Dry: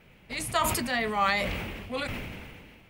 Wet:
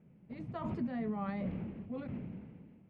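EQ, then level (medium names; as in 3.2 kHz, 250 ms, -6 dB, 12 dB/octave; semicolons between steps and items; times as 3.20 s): band-pass filter 180 Hz, Q 1.9; distance through air 130 m; bass shelf 180 Hz -4.5 dB; +4.0 dB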